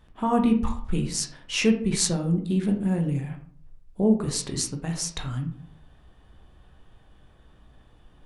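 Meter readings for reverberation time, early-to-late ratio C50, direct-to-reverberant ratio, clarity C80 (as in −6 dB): 0.50 s, 9.5 dB, 2.5 dB, 13.0 dB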